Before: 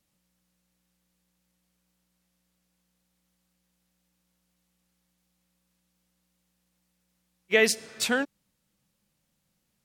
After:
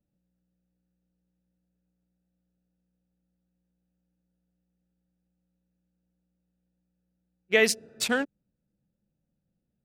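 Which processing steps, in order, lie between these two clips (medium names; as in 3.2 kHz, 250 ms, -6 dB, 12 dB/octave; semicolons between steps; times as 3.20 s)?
local Wiener filter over 41 samples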